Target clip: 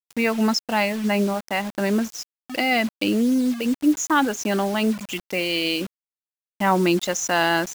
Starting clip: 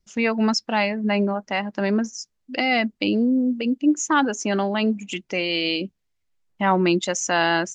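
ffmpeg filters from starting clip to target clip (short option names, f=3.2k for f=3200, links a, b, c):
-af "acrusher=bits=5:mix=0:aa=0.000001"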